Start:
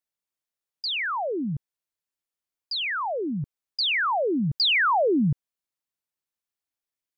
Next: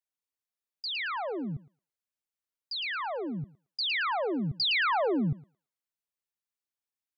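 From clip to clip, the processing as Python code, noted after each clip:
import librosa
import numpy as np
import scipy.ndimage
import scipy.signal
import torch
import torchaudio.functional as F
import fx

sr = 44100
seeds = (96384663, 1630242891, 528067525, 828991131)

y = fx.echo_thinned(x, sr, ms=111, feedback_pct=32, hz=760.0, wet_db=-8)
y = y * 10.0 ** (-6.0 / 20.0)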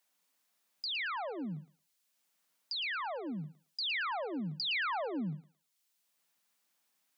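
y = scipy.signal.sosfilt(scipy.signal.cheby1(8, 1.0, 150.0, 'highpass', fs=sr, output='sos'), x)
y = fx.peak_eq(y, sr, hz=390.0, db=-6.0, octaves=0.47)
y = fx.band_squash(y, sr, depth_pct=70)
y = y * 10.0 ** (-4.5 / 20.0)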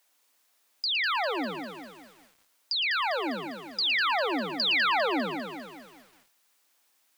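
y = scipy.signal.sosfilt(scipy.signal.butter(4, 260.0, 'highpass', fs=sr, output='sos'), x)
y = fx.echo_crushed(y, sr, ms=200, feedback_pct=55, bits=10, wet_db=-6.5)
y = y * 10.0 ** (8.5 / 20.0)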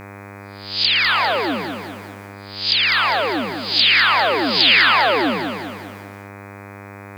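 y = fx.spec_swells(x, sr, rise_s=0.5)
y = fx.dispersion(y, sr, late='lows', ms=98.0, hz=1400.0)
y = fx.dmg_buzz(y, sr, base_hz=100.0, harmonics=25, level_db=-45.0, tilt_db=-3, odd_only=False)
y = y * 10.0 ** (8.0 / 20.0)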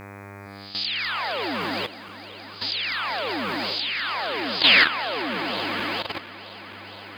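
y = fx.reverse_delay_fb(x, sr, ms=232, feedback_pct=83, wet_db=-11.5)
y = fx.level_steps(y, sr, step_db=13)
y = y * 10.0 ** (-1.5 / 20.0)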